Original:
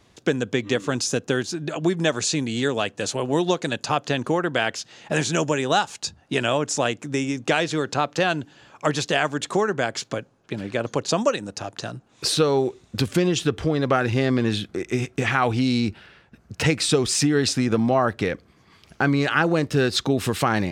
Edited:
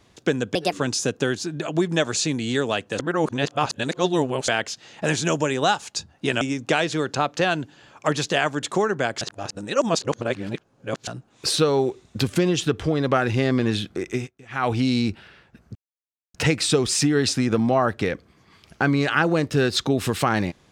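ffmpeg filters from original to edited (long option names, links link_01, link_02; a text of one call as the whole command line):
ffmpeg -i in.wav -filter_complex "[0:a]asplit=11[link_01][link_02][link_03][link_04][link_05][link_06][link_07][link_08][link_09][link_10][link_11];[link_01]atrim=end=0.554[link_12];[link_02]atrim=start=0.55:end=0.8,asetpts=PTS-STARTPTS,asetrate=63945,aresample=44100,atrim=end_sample=7603,asetpts=PTS-STARTPTS[link_13];[link_03]atrim=start=0.796:end=3.072[link_14];[link_04]atrim=start=3.068:end=4.562,asetpts=PTS-STARTPTS,areverse[link_15];[link_05]atrim=start=4.558:end=6.492[link_16];[link_06]atrim=start=7.198:end=10.002[link_17];[link_07]atrim=start=9.998:end=11.862,asetpts=PTS-STARTPTS,areverse[link_18];[link_08]atrim=start=11.858:end=15.1,asetpts=PTS-STARTPTS,afade=type=out:start_time=2.972:duration=0.27:curve=qsin:silence=0.0668344[link_19];[link_09]atrim=start=15.1:end=15.28,asetpts=PTS-STARTPTS,volume=-23.5dB[link_20];[link_10]atrim=start=15.28:end=16.54,asetpts=PTS-STARTPTS,afade=type=in:duration=0.27:curve=qsin:silence=0.0668344,afade=type=out:start_time=1.256:duration=0.004:curve=hsin,apad=pad_dur=0.59[link_21];[link_11]atrim=start=16.54,asetpts=PTS-STARTPTS,afade=type=in:duration=0.004:curve=hsin[link_22];[link_12][link_13]acrossfade=duration=0.004:curve1=hsin:curve2=hsin[link_23];[link_23][link_14]acrossfade=duration=0.004:curve1=hsin:curve2=hsin[link_24];[link_24][link_15]acrossfade=duration=0.004:curve1=hsin:curve2=hsin[link_25];[link_25][link_16]acrossfade=duration=0.004:curve1=hsin:curve2=hsin[link_26];[link_26][link_17]acrossfade=duration=0.004:curve1=hsin:curve2=hsin[link_27];[link_27][link_18]acrossfade=duration=0.004:curve1=hsin:curve2=hsin[link_28];[link_19][link_20][link_21][link_22]concat=n=4:v=0:a=1[link_29];[link_28][link_29]acrossfade=duration=0.004:curve1=hsin:curve2=hsin" out.wav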